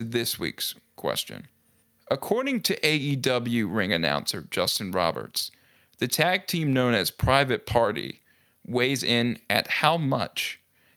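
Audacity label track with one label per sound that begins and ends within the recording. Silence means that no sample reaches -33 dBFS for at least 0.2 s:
0.980000	1.410000	sound
2.110000	5.480000	sound
6.020000	8.110000	sound
8.690000	10.530000	sound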